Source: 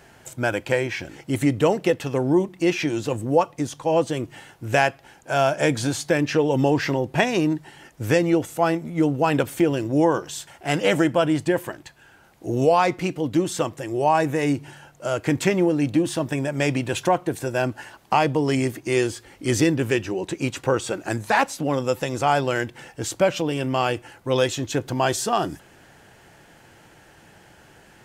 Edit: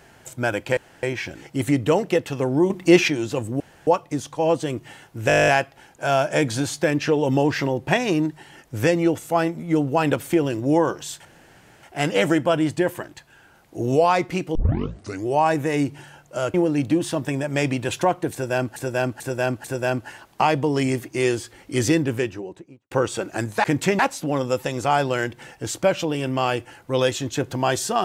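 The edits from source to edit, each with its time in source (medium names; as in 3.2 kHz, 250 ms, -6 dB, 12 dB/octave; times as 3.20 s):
0.77 s: insert room tone 0.26 s
2.44–2.82 s: gain +7 dB
3.34 s: insert room tone 0.27 s
4.75 s: stutter 0.02 s, 11 plays
10.52 s: insert room tone 0.58 s
13.24 s: tape start 0.72 s
15.23–15.58 s: move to 21.36 s
17.36–17.80 s: loop, 4 plays
19.66–20.63 s: studio fade out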